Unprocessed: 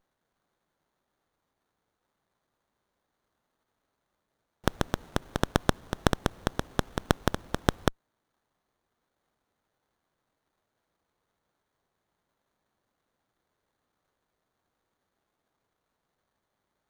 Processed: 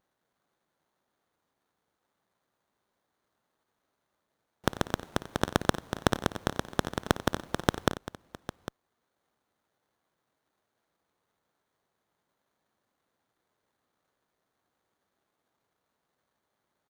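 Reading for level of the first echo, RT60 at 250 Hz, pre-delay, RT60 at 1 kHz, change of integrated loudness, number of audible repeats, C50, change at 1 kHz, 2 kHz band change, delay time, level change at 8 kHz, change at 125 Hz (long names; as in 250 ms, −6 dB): −17.0 dB, no reverb audible, no reverb audible, no reverb audible, −0.5 dB, 3, no reverb audible, +0.5 dB, +0.5 dB, 56 ms, +0.5 dB, −2.5 dB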